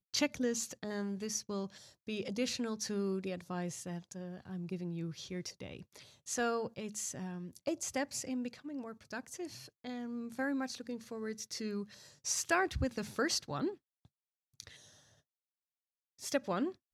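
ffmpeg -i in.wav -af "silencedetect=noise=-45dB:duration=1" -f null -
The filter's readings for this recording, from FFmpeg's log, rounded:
silence_start: 14.71
silence_end: 16.22 | silence_duration: 1.51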